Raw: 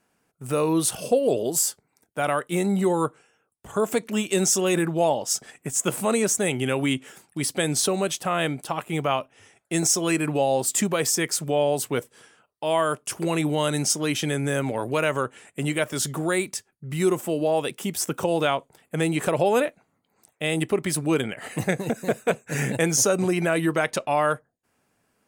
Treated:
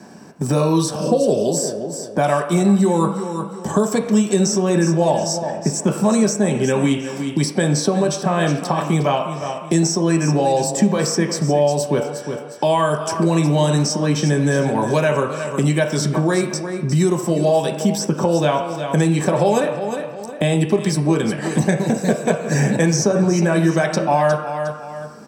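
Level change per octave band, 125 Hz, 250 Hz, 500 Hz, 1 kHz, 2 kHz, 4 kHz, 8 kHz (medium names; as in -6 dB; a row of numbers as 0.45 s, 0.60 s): +11.0 dB, +8.5 dB, +6.0 dB, +6.0 dB, +2.5 dB, +3.0 dB, 0.0 dB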